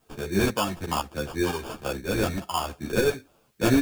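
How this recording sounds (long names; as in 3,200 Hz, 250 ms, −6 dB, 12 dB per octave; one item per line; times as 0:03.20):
aliases and images of a low sample rate 2,000 Hz, jitter 0%
tremolo saw up 2 Hz, depth 60%
a quantiser's noise floor 12 bits, dither triangular
a shimmering, thickened sound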